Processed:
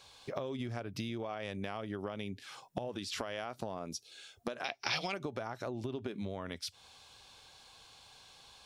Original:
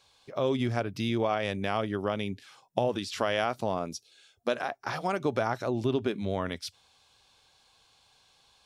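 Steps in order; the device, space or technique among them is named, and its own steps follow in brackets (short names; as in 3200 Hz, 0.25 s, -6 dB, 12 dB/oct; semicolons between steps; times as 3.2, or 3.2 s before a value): serial compression, leveller first (compressor 3:1, threshold -29 dBFS, peak gain reduction 6 dB; compressor 5:1, threshold -43 dBFS, peak gain reduction 15 dB); 4.64–5.14 band shelf 3500 Hz +15.5 dB; gain +6 dB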